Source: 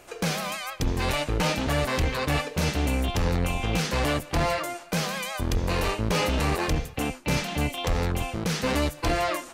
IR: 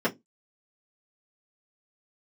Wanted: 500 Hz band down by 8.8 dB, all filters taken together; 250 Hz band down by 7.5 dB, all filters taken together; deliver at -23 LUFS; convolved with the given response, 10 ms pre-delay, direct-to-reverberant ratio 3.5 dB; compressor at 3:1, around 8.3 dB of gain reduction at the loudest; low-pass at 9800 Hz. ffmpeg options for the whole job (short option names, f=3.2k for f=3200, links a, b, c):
-filter_complex "[0:a]lowpass=9.8k,equalizer=f=250:t=o:g=-9,equalizer=f=500:t=o:g=-9,acompressor=threshold=-33dB:ratio=3,asplit=2[a][b];[1:a]atrim=start_sample=2205,adelay=10[c];[b][c]afir=irnorm=-1:irlink=0,volume=-15.5dB[d];[a][d]amix=inputs=2:normalize=0,volume=11dB"